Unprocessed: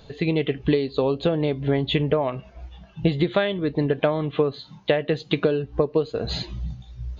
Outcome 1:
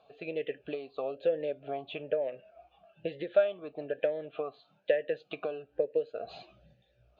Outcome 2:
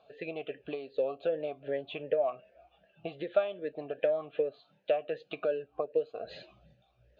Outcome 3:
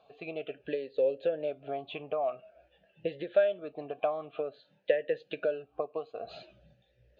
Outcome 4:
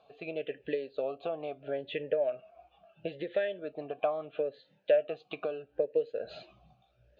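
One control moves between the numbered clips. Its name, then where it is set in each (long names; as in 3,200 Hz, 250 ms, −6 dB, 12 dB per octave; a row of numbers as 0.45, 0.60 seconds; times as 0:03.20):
formant filter swept between two vowels, speed: 1.1, 2.6, 0.5, 0.75 Hertz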